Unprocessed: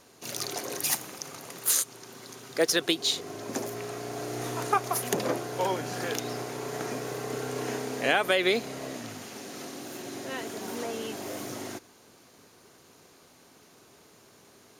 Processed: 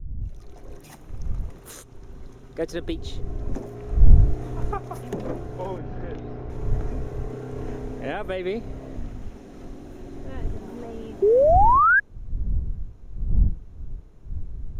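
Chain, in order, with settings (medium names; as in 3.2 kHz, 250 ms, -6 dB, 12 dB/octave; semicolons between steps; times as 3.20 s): fade-in on the opening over 1.59 s; wind noise 91 Hz -36 dBFS; tilt EQ -4 dB/octave; band-stop 4.6 kHz, Q 8.8; 5.78–6.50 s: distance through air 200 m; 8.54–9.16 s: crackle 110 per s -> 300 per s -52 dBFS; 11.22–12.00 s: painted sound rise 380–1700 Hz -9 dBFS; trim -7 dB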